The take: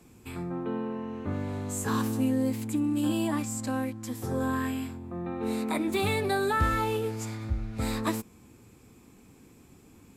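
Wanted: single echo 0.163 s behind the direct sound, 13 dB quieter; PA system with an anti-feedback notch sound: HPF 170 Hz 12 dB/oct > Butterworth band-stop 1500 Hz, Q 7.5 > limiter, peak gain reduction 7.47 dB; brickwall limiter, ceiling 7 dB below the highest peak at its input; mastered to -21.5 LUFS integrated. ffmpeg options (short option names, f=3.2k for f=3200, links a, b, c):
-af "alimiter=limit=-21.5dB:level=0:latency=1,highpass=170,asuperstop=centerf=1500:order=8:qfactor=7.5,aecho=1:1:163:0.224,volume=14dB,alimiter=limit=-12.5dB:level=0:latency=1"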